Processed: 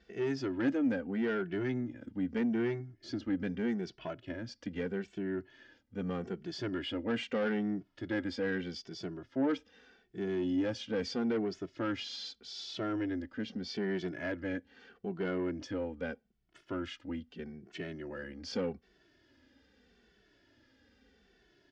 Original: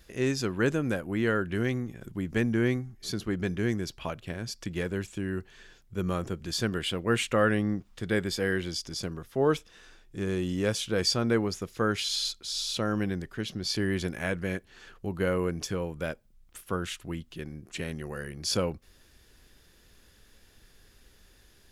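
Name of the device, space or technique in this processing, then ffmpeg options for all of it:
barber-pole flanger into a guitar amplifier: -filter_complex "[0:a]asplit=2[a][b];[b]adelay=2.2,afreqshift=-0.8[c];[a][c]amix=inputs=2:normalize=1,asoftclip=type=tanh:threshold=-27.5dB,highpass=91,equalizer=f=100:t=q:w=4:g=-7,equalizer=f=150:t=q:w=4:g=-9,equalizer=f=270:t=q:w=4:g=8,equalizer=f=1.1k:t=q:w=4:g=-8,equalizer=f=2.5k:t=q:w=4:g=-5,equalizer=f=3.9k:t=q:w=4:g=-8,lowpass=f=4.5k:w=0.5412,lowpass=f=4.5k:w=1.3066"

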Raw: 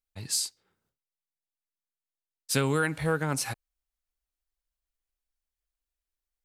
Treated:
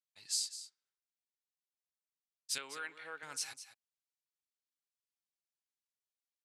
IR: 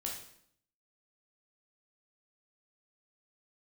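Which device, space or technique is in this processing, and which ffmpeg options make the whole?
piezo pickup straight into a mixer: -filter_complex "[0:a]lowpass=5.7k,aderivative,asettb=1/sr,asplit=3[a][b][c];[a]atrim=end=2.584[d];[b]atrim=start=2.58:end=3.23,asetpts=PTS-STARTPTS,afade=t=in:d=0.004:c=qsin,afade=t=out:st=0.646:d=0.004:c=qsin,acrossover=split=220 3500:gain=0.158 1 0.112[e][f][g];[e][f][g]amix=inputs=3:normalize=0[h];[c]atrim=start=3.226[i];[d][h]acrossfade=d=0.004:c1=hsin:c2=qsin[j];[j][i]acrossfade=d=0.004:c1=qsin:c2=hsin,aecho=1:1:203:0.237"

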